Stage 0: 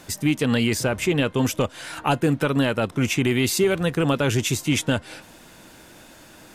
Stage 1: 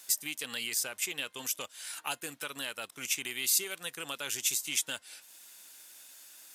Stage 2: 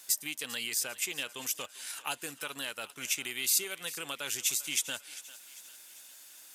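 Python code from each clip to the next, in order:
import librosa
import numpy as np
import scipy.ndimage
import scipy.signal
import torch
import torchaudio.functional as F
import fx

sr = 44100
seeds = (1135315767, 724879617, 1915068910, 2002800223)

y1 = fx.transient(x, sr, attack_db=2, sustain_db=-3)
y1 = np.diff(y1, prepend=0.0)
y2 = fx.echo_thinned(y1, sr, ms=397, feedback_pct=52, hz=650.0, wet_db=-16.5)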